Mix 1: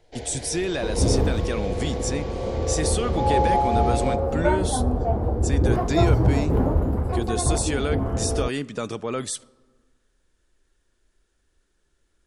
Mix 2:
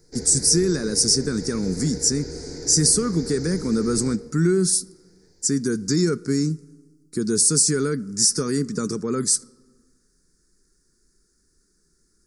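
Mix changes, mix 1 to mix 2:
second sound: muted
master: add drawn EQ curve 110 Hz 0 dB, 170 Hz +12 dB, 300 Hz +5 dB, 430 Hz +5 dB, 650 Hz −16 dB, 1,400 Hz +2 dB, 2,100 Hz −6 dB, 3,100 Hz −23 dB, 4,800 Hz +13 dB, 7,000 Hz +11 dB

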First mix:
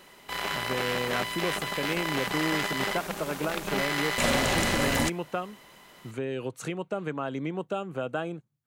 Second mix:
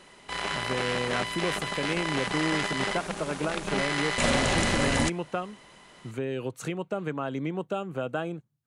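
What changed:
background: add linear-phase brick-wall low-pass 11,000 Hz
master: add low-shelf EQ 200 Hz +3 dB

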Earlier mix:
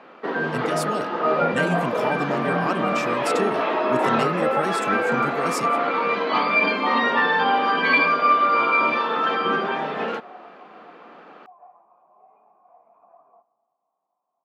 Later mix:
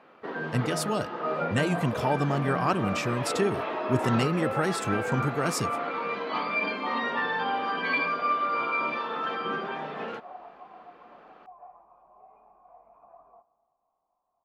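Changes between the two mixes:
first sound −9.0 dB
master: remove high-pass filter 160 Hz 24 dB per octave

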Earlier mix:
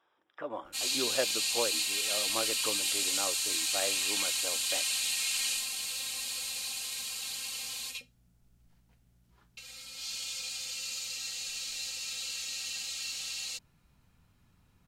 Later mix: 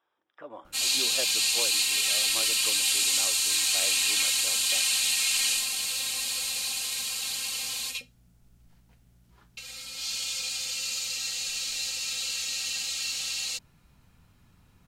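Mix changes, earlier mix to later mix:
speech −5.0 dB
background +6.0 dB

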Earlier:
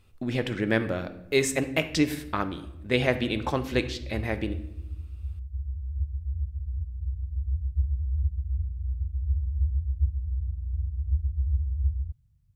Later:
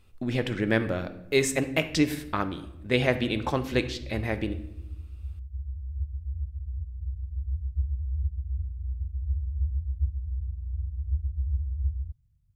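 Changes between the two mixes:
background −4.5 dB
master: add low-shelf EQ 62 Hz +5 dB

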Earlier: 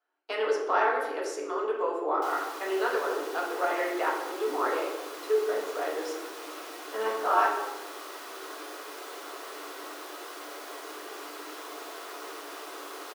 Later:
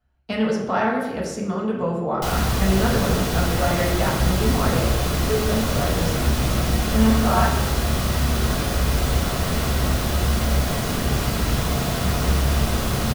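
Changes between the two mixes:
background +10.5 dB
master: remove Chebyshev high-pass with heavy ripple 290 Hz, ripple 6 dB

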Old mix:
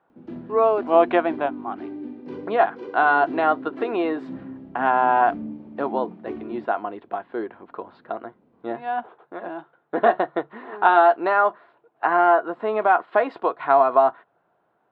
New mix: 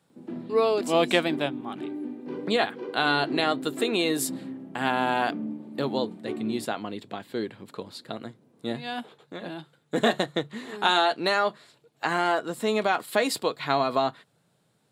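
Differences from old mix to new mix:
speech: remove loudspeaker in its box 310–2,300 Hz, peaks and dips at 350 Hz +6 dB, 710 Hz +10 dB, 1,000 Hz +8 dB, 1,400 Hz +6 dB, 2,200 Hz −4 dB
master: add high-pass filter 130 Hz 24 dB per octave

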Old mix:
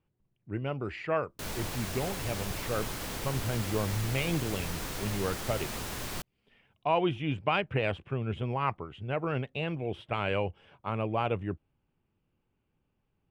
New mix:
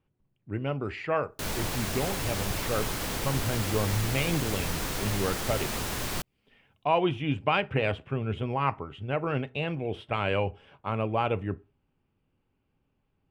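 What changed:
background +5.0 dB
reverb: on, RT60 0.30 s

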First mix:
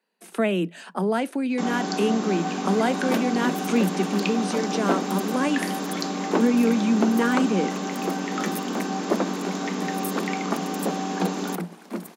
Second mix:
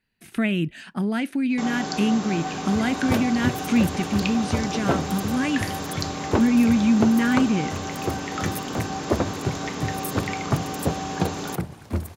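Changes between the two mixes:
speech: add octave-band graphic EQ 250/500/1,000/2,000/8,000 Hz +5/−11/−7/+5/−5 dB
first sound: add high-pass filter 400 Hz 6 dB per octave
master: remove Chebyshev high-pass filter 170 Hz, order 10

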